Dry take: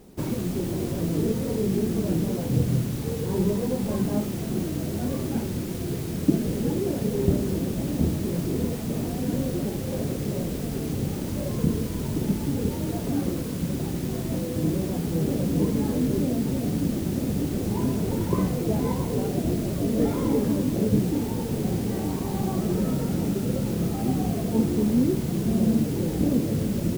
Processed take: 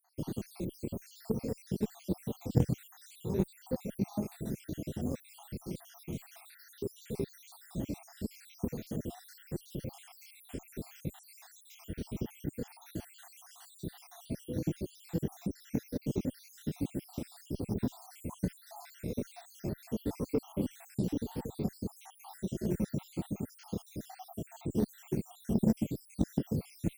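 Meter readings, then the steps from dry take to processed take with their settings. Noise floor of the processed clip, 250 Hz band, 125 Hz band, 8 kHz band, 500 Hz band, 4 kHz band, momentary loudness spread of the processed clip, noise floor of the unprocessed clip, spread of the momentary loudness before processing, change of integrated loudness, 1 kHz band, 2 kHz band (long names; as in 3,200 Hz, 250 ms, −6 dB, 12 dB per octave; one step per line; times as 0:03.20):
−59 dBFS, −12.5 dB, −12.0 dB, −13.0 dB, −12.0 dB, −13.0 dB, 12 LU, −30 dBFS, 5 LU, −12.0 dB, −13.5 dB, −13.0 dB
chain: time-frequency cells dropped at random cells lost 73%
harmonic generator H 3 −13 dB, 5 −34 dB, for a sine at −10.5 dBFS
dynamic equaliser 1,100 Hz, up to −4 dB, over −59 dBFS, Q 2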